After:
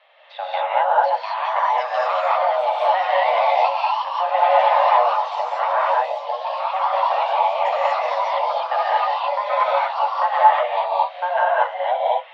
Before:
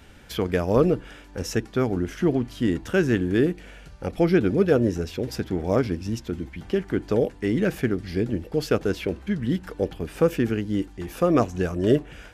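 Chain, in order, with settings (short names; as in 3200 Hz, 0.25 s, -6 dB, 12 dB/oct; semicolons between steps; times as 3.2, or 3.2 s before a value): mistuned SSB +370 Hz 180–3400 Hz; echoes that change speed 0.781 s, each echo +3 st, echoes 2; non-linear reverb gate 0.26 s rising, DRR -6 dB; gain -3.5 dB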